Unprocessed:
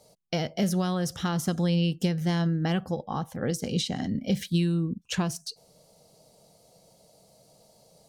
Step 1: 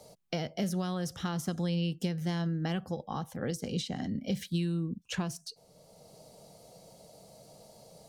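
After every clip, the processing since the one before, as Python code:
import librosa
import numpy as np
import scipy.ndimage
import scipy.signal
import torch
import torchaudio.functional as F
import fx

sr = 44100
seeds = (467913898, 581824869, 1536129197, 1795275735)

y = fx.band_squash(x, sr, depth_pct=40)
y = y * librosa.db_to_amplitude(-6.0)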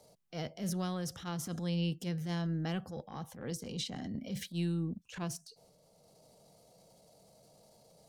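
y = fx.transient(x, sr, attack_db=-9, sustain_db=6)
y = fx.upward_expand(y, sr, threshold_db=-42.0, expansion=1.5)
y = y * librosa.db_to_amplitude(-1.5)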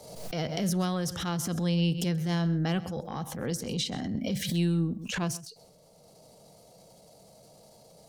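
y = x + 10.0 ** (-19.0 / 20.0) * np.pad(x, (int(130 * sr / 1000.0), 0))[:len(x)]
y = fx.pre_swell(y, sr, db_per_s=54.0)
y = y * librosa.db_to_amplitude(7.0)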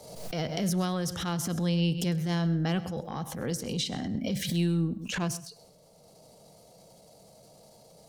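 y = fx.echo_feedback(x, sr, ms=102, feedback_pct=37, wet_db=-21.0)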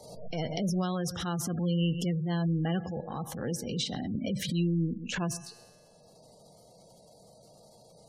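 y = fx.comb_fb(x, sr, f0_hz=120.0, decay_s=1.8, harmonics='all', damping=0.0, mix_pct=60)
y = fx.spec_gate(y, sr, threshold_db=-25, keep='strong')
y = y * librosa.db_to_amplitude(6.5)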